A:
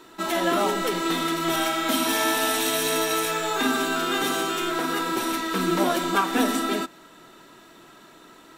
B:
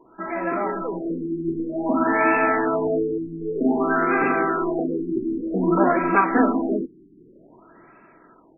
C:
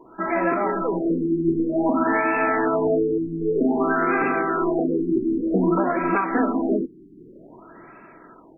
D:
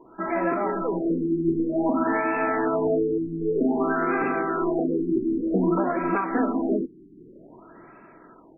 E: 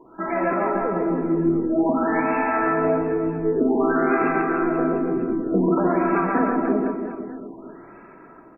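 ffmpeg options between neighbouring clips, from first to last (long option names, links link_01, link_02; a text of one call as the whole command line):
ffmpeg -i in.wav -af "dynaudnorm=framelen=220:gausssize=13:maxgain=11.5dB,afftfilt=real='re*lt(b*sr/1024,400*pow(2700/400,0.5+0.5*sin(2*PI*0.53*pts/sr)))':imag='im*lt(b*sr/1024,400*pow(2700/400,0.5+0.5*sin(2*PI*0.53*pts/sr)))':win_size=1024:overlap=0.75,volume=-2.5dB" out.wav
ffmpeg -i in.wav -af "alimiter=limit=-16.5dB:level=0:latency=1:release=454,volume=5dB" out.wav
ffmpeg -i in.wav -af "highshelf=frequency=2300:gain=-7.5,volume=-2dB" out.wav
ffmpeg -i in.wav -af "aecho=1:1:140|301|486.2|699.1|943.9:0.631|0.398|0.251|0.158|0.1,volume=1.5dB" out.wav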